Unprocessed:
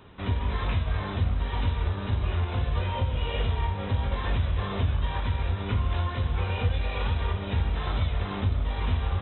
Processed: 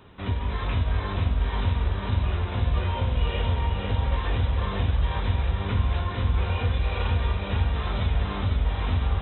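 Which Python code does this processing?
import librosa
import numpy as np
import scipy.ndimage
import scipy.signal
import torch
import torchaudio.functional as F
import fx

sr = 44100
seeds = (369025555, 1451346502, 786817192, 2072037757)

y = x + fx.echo_feedback(x, sr, ms=498, feedback_pct=54, wet_db=-5, dry=0)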